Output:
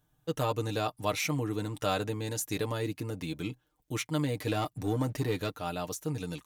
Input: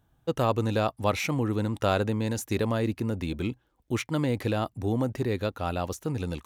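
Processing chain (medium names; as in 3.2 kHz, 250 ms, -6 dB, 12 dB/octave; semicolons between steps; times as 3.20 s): 4.47–5.52 s: waveshaping leveller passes 1; treble shelf 3.7 kHz +9 dB; comb 6.6 ms, depth 69%; trim -7 dB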